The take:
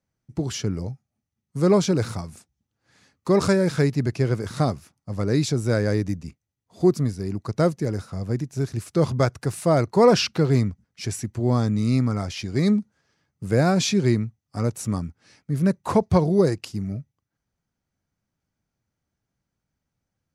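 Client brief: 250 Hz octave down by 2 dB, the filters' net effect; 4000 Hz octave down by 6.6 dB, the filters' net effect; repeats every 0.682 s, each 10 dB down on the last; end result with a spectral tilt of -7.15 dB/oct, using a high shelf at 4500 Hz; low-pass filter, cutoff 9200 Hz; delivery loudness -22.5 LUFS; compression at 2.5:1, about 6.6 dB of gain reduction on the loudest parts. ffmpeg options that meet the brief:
-af "lowpass=9.2k,equalizer=f=250:t=o:g=-3,equalizer=f=4k:t=o:g=-6.5,highshelf=f=4.5k:g=-3.5,acompressor=threshold=-23dB:ratio=2.5,aecho=1:1:682|1364|2046|2728:0.316|0.101|0.0324|0.0104,volume=6dB"

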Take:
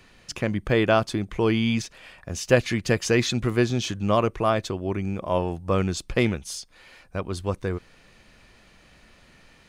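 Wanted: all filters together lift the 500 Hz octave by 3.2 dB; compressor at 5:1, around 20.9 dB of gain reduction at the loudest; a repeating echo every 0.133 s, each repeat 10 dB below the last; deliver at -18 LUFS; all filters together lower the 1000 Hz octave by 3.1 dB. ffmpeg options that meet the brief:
-af "equalizer=f=500:t=o:g=5.5,equalizer=f=1k:t=o:g=-6.5,acompressor=threshold=-34dB:ratio=5,aecho=1:1:133|266|399|532:0.316|0.101|0.0324|0.0104,volume=19dB"

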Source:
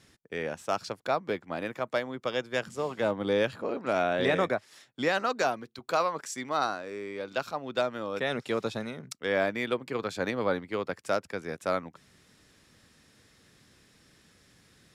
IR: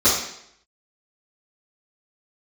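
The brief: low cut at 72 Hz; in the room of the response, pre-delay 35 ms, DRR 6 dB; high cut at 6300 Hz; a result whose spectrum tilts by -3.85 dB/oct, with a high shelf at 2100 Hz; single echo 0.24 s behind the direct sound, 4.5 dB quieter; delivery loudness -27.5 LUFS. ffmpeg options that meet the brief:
-filter_complex "[0:a]highpass=72,lowpass=6.3k,highshelf=f=2.1k:g=-5,aecho=1:1:240:0.596,asplit=2[a][b];[1:a]atrim=start_sample=2205,adelay=35[c];[b][c]afir=irnorm=-1:irlink=0,volume=-25.5dB[d];[a][d]amix=inputs=2:normalize=0,volume=1.5dB"

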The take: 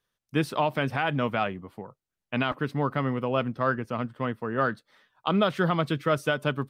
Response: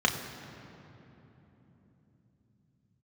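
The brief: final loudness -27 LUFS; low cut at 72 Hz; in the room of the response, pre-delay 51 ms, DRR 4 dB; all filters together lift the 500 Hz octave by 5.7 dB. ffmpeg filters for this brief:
-filter_complex "[0:a]highpass=72,equalizer=f=500:t=o:g=7,asplit=2[a][b];[1:a]atrim=start_sample=2205,adelay=51[c];[b][c]afir=irnorm=-1:irlink=0,volume=-16.5dB[d];[a][d]amix=inputs=2:normalize=0,volume=-3.5dB"

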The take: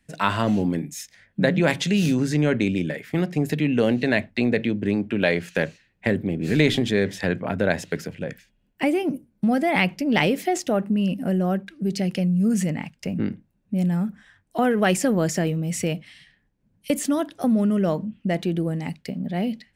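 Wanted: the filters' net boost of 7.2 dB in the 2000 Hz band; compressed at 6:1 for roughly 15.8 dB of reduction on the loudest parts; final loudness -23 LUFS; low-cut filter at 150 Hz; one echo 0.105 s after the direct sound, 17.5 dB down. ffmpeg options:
-af "highpass=150,equalizer=f=2k:t=o:g=8.5,acompressor=threshold=-29dB:ratio=6,aecho=1:1:105:0.133,volume=10dB"

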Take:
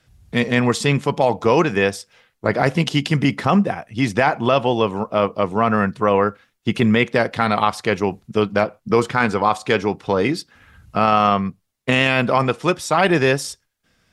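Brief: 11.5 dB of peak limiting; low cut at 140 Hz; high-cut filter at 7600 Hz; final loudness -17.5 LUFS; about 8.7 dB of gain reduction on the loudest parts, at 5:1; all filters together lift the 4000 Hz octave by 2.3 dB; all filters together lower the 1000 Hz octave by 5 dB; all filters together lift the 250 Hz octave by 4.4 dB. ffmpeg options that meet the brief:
-af "highpass=140,lowpass=7.6k,equalizer=f=250:t=o:g=6.5,equalizer=f=1k:t=o:g=-7.5,equalizer=f=4k:t=o:g=4,acompressor=threshold=-19dB:ratio=5,volume=11dB,alimiter=limit=-6dB:level=0:latency=1"

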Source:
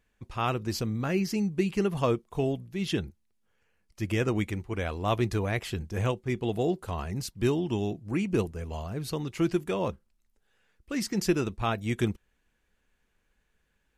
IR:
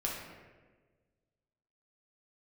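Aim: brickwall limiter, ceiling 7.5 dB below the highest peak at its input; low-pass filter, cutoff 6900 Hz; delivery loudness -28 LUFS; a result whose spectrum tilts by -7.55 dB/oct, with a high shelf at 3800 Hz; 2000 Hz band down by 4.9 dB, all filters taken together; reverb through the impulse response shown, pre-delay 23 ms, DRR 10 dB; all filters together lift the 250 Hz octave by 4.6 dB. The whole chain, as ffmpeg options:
-filter_complex "[0:a]lowpass=6.9k,equalizer=f=250:t=o:g=6.5,equalizer=f=2k:t=o:g=-5.5,highshelf=f=3.8k:g=-3.5,alimiter=limit=-17.5dB:level=0:latency=1,asplit=2[a][b];[1:a]atrim=start_sample=2205,adelay=23[c];[b][c]afir=irnorm=-1:irlink=0,volume=-14dB[d];[a][d]amix=inputs=2:normalize=0,volume=0.5dB"

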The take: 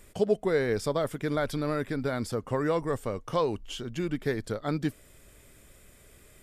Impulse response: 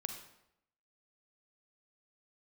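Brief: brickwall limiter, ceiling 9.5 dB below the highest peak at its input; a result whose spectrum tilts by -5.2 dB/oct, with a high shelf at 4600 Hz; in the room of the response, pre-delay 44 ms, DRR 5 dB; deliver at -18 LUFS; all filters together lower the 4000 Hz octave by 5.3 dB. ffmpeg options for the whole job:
-filter_complex "[0:a]equalizer=f=4k:t=o:g=-5,highshelf=f=4.6k:g=-4,alimiter=limit=-22.5dB:level=0:latency=1,asplit=2[a][b];[1:a]atrim=start_sample=2205,adelay=44[c];[b][c]afir=irnorm=-1:irlink=0,volume=-4dB[d];[a][d]amix=inputs=2:normalize=0,volume=14.5dB"

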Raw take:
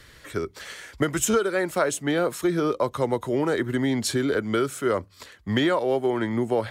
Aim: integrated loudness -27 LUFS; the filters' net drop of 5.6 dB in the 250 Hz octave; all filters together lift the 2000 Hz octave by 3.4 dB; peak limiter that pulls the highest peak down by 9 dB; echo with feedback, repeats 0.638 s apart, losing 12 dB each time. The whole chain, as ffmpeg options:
-af "equalizer=f=250:t=o:g=-8,equalizer=f=2k:t=o:g=4.5,alimiter=limit=-17dB:level=0:latency=1,aecho=1:1:638|1276|1914:0.251|0.0628|0.0157,volume=1dB"

